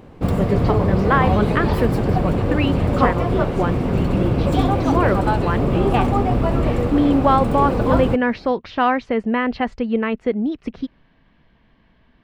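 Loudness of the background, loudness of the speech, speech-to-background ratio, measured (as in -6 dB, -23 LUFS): -20.0 LUFS, -22.0 LUFS, -2.0 dB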